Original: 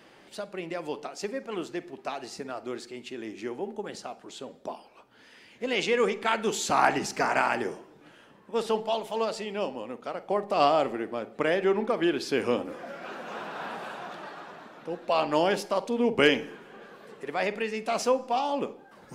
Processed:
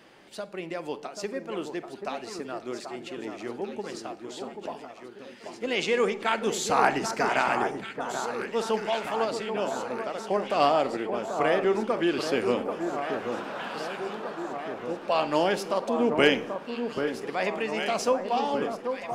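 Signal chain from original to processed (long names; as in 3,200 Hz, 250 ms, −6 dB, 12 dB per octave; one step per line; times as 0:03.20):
delay that swaps between a low-pass and a high-pass 785 ms, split 1,500 Hz, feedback 77%, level −6.5 dB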